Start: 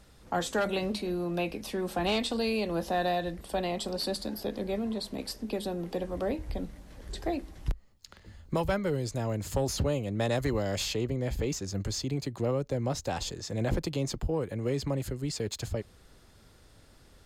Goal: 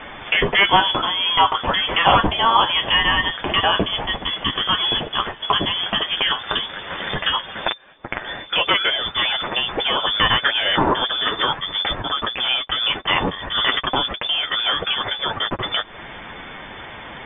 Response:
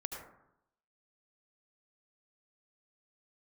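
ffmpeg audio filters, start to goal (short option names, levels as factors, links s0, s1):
-filter_complex "[0:a]highpass=f=83:p=1,highshelf=f=2300:g=12,asplit=2[s0][s1];[s1]aeval=exprs='sgn(val(0))*max(abs(val(0))-0.00473,0)':c=same,volume=0.501[s2];[s0][s2]amix=inputs=2:normalize=0,acompressor=threshold=0.0158:ratio=5,acrusher=bits=5:mode=log:mix=0:aa=0.000001,flanger=delay=7.7:depth=2.9:regen=23:speed=0.64:shape=triangular,apsyclip=47.3,tiltshelf=f=1400:g=-10,lowpass=f=3100:t=q:w=0.5098,lowpass=f=3100:t=q:w=0.6013,lowpass=f=3100:t=q:w=0.9,lowpass=f=3100:t=q:w=2.563,afreqshift=-3600,volume=0.501"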